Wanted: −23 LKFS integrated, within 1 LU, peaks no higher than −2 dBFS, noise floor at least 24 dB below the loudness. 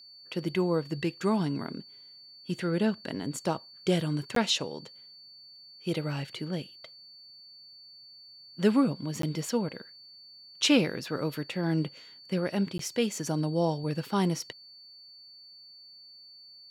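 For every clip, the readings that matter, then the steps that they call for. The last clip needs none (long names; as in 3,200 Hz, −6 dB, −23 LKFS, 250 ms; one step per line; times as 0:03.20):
number of dropouts 3; longest dropout 13 ms; interfering tone 4,500 Hz; level of the tone −49 dBFS; integrated loudness −30.0 LKFS; sample peak −10.5 dBFS; target loudness −23.0 LKFS
→ repair the gap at 0:04.35/0:09.22/0:12.78, 13 ms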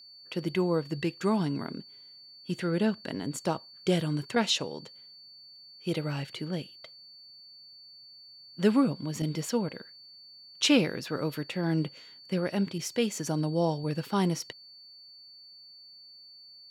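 number of dropouts 0; interfering tone 4,500 Hz; level of the tone −49 dBFS
→ notch filter 4,500 Hz, Q 30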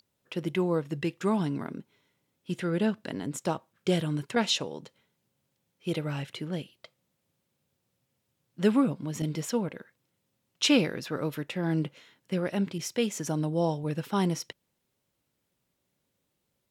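interfering tone none found; integrated loudness −30.0 LKFS; sample peak −11.0 dBFS; target loudness −23.0 LKFS
→ level +7 dB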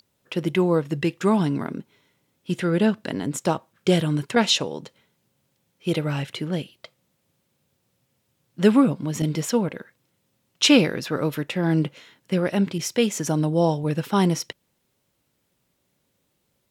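integrated loudness −23.0 LKFS; sample peak −4.0 dBFS; background noise floor −72 dBFS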